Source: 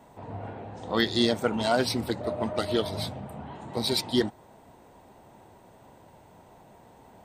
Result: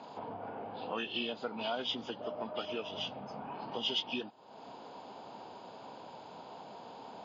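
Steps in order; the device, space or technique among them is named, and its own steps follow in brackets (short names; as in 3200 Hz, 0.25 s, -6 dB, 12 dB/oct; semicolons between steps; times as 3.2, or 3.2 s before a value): hearing aid with frequency lowering (nonlinear frequency compression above 1600 Hz 1.5:1; compressor 3:1, threshold -45 dBFS, peak gain reduction 19 dB; speaker cabinet 280–5500 Hz, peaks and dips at 350 Hz -6 dB, 600 Hz -3 dB, 1900 Hz -10 dB, 3400 Hz +8 dB); gain +7.5 dB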